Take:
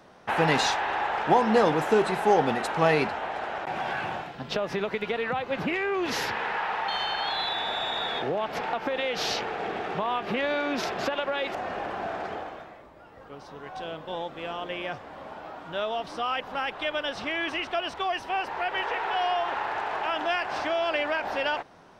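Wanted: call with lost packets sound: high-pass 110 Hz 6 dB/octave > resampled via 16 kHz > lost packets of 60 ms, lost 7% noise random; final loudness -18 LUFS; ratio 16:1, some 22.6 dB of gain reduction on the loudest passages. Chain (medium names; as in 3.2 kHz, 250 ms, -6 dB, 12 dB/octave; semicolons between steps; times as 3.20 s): compression 16:1, threshold -39 dBFS; high-pass 110 Hz 6 dB/octave; resampled via 16 kHz; lost packets of 60 ms, lost 7% noise random; trim +25 dB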